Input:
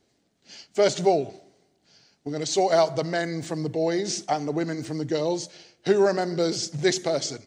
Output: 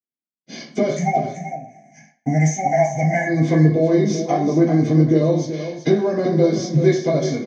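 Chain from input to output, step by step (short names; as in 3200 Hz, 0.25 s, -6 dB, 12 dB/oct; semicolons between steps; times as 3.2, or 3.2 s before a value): notch 2700 Hz, Q 5.7; gate -56 dBFS, range -56 dB; 0.96–3.27 EQ curve 230 Hz 0 dB, 410 Hz -24 dB, 820 Hz +12 dB, 1200 Hz -26 dB, 1800 Hz +13 dB, 2600 Hz +3 dB, 3900 Hz -25 dB, 6500 Hz +14 dB; compressor 4:1, threshold -36 dBFS, peak gain reduction 19 dB; air absorption 64 m; echo 0.382 s -10 dB; reverb RT60 0.45 s, pre-delay 3 ms, DRR -9.5 dB; gain -1.5 dB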